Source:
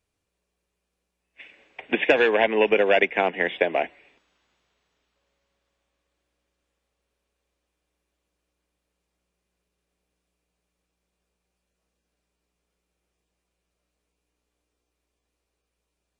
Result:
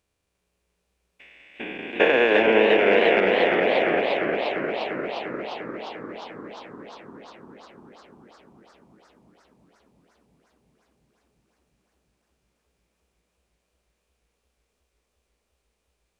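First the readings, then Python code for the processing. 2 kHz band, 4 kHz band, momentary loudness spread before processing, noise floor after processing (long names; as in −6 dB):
+2.5 dB, +4.0 dB, 9 LU, −76 dBFS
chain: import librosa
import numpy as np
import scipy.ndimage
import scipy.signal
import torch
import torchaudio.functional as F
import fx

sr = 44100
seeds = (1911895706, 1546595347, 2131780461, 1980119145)

p1 = fx.spec_steps(x, sr, hold_ms=400)
p2 = fx.hum_notches(p1, sr, base_hz=50, count=10)
p3 = fx.transient(p2, sr, attack_db=4, sustain_db=-11)
p4 = p3 + fx.echo_filtered(p3, sr, ms=546, feedback_pct=74, hz=820.0, wet_db=-14, dry=0)
p5 = fx.echo_warbled(p4, sr, ms=351, feedback_pct=75, rate_hz=2.8, cents=115, wet_db=-4.5)
y = p5 * 10.0 ** (4.5 / 20.0)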